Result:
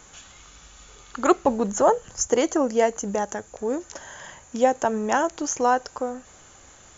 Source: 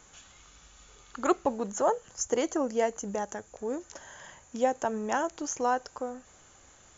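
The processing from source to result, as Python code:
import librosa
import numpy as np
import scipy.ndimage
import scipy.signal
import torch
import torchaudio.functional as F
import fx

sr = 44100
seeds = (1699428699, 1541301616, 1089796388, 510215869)

y = fx.low_shelf(x, sr, hz=180.0, db=7.5, at=(1.48, 2.26))
y = F.gain(torch.from_numpy(y), 7.0).numpy()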